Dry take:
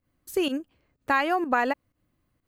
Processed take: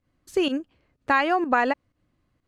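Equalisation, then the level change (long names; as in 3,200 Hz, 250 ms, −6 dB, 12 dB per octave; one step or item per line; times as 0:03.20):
low-pass filter 6,600 Hz 12 dB per octave
+2.5 dB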